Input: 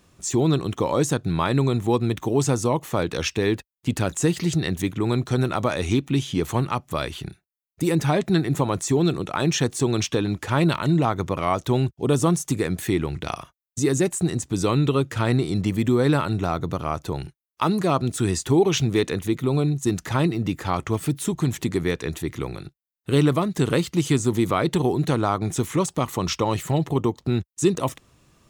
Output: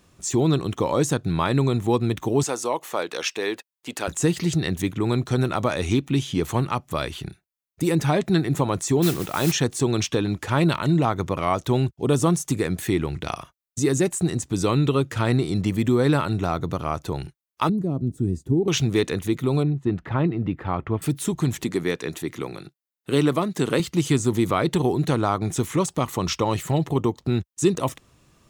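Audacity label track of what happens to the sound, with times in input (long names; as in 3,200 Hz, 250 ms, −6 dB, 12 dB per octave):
2.430000	4.080000	high-pass filter 450 Hz
9.020000	9.520000	noise that follows the level under the signal 11 dB
17.690000	18.680000	drawn EQ curve 270 Hz 0 dB, 620 Hz −13 dB, 1,200 Hz −25 dB, 3,400 Hz −27 dB, 13,000 Hz −19 dB
19.630000	21.020000	high-frequency loss of the air 490 metres
21.640000	23.800000	high-pass filter 170 Hz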